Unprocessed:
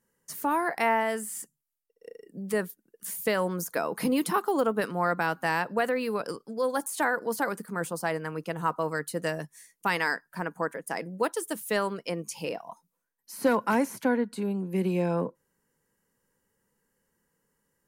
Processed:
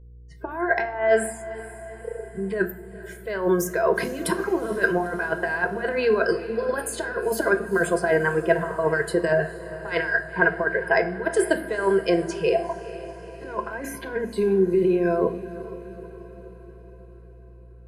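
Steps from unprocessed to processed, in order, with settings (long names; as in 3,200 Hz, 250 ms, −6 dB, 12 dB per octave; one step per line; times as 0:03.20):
noise reduction from a noise print of the clip's start 30 dB
low-pass that shuts in the quiet parts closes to 860 Hz, open at −27.5 dBFS
dynamic equaliser 1,400 Hz, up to +6 dB, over −40 dBFS, Q 1.1
compressor whose output falls as the input rises −29 dBFS, ratio −0.5
hollow resonant body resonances 370/670/1,600 Hz, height 15 dB, ringing for 50 ms
hum with harmonics 60 Hz, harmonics 8, −50 dBFS −8 dB per octave
feedback delay with all-pass diffusion 459 ms, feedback 58%, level −15 dB
convolution reverb RT60 0.65 s, pre-delay 6 ms, DRR 9 dB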